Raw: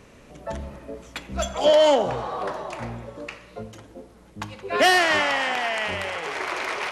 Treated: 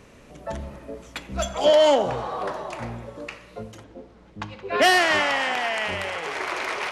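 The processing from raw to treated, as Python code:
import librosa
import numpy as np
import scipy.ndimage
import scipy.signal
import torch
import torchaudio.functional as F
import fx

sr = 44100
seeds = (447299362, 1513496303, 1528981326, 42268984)

y = fx.lowpass(x, sr, hz=4700.0, slope=12, at=(3.83, 4.8), fade=0.02)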